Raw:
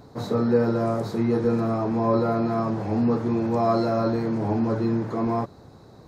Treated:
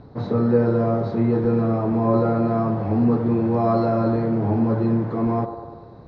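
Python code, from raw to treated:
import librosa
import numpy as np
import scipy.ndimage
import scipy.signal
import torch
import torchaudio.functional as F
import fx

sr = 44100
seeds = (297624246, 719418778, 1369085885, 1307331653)

p1 = scipy.signal.sosfilt(scipy.signal.bessel(8, 3000.0, 'lowpass', norm='mag', fs=sr, output='sos'), x)
p2 = fx.low_shelf(p1, sr, hz=220.0, db=7.0)
y = p2 + fx.echo_wet_bandpass(p2, sr, ms=98, feedback_pct=63, hz=670.0, wet_db=-8.0, dry=0)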